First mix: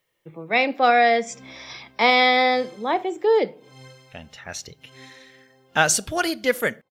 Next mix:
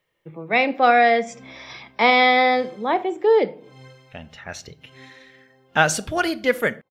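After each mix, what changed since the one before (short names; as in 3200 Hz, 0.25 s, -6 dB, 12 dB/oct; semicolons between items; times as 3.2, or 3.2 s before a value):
speech: send +6.5 dB; master: add tone controls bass +1 dB, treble -8 dB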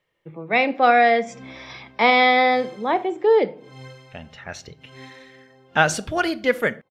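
speech: add high shelf 9100 Hz -9 dB; background +4.5 dB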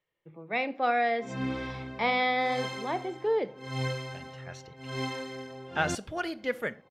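speech -11.0 dB; background +9.5 dB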